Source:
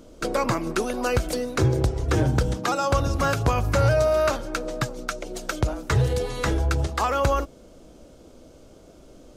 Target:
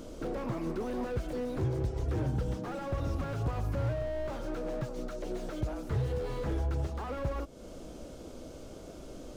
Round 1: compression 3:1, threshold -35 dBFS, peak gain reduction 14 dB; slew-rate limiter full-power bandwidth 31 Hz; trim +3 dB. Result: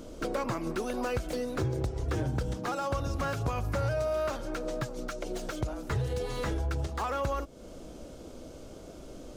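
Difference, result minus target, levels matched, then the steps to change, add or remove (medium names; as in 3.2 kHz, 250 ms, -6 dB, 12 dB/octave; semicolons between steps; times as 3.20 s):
slew-rate limiter: distortion -9 dB
change: slew-rate limiter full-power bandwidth 8 Hz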